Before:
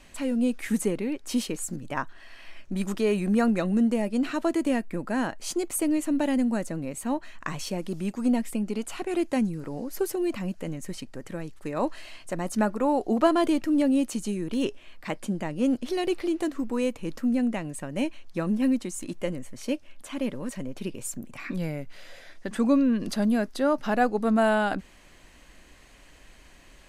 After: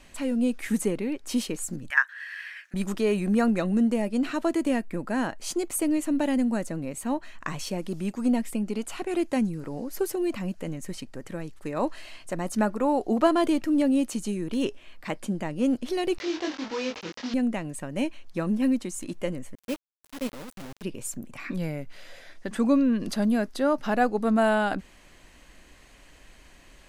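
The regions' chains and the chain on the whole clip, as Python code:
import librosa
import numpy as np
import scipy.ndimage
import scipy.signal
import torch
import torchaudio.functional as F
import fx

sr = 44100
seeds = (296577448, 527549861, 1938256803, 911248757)

y = fx.chain(x, sr, fx.highpass_res(hz=1700.0, q=7.8),
    fx.high_shelf(hz=11000.0, db=7.0), at=(1.9, 2.74))
y = fx.chain(y, sr, fx.delta_mod(bps=32000, step_db=-30.5),
    fx.highpass(hz=520.0, slope=6),
    fx.doubler(ms=23.0, db=-2.5), at=(16.18, 17.34))
y = fx.chain(y, sr, fx.level_steps(step_db=9),
    fx.quant_dither(seeds[0], bits=6, dither='none'),
    fx.upward_expand(threshold_db=-42.0, expansion=1.5), at=(19.55, 20.83))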